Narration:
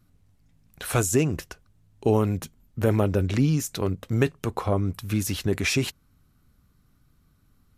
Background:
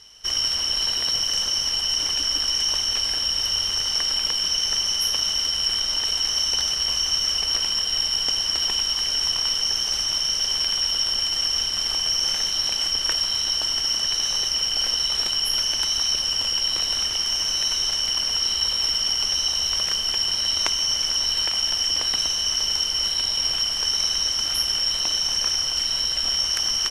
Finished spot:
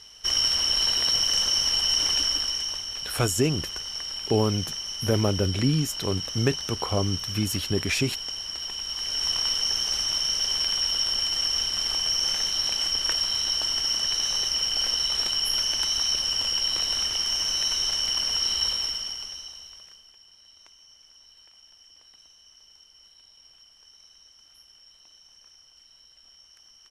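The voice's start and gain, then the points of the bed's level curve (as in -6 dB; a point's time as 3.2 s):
2.25 s, -1.5 dB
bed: 2.19 s 0 dB
2.85 s -10.5 dB
8.77 s -10.5 dB
9.32 s -2.5 dB
18.68 s -2.5 dB
20.17 s -31 dB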